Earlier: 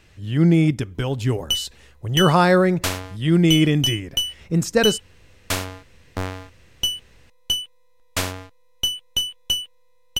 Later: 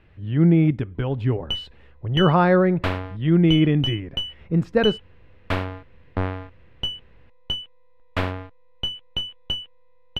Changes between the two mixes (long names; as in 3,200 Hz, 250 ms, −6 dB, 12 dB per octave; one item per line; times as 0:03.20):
background +3.5 dB
master: add high-frequency loss of the air 470 metres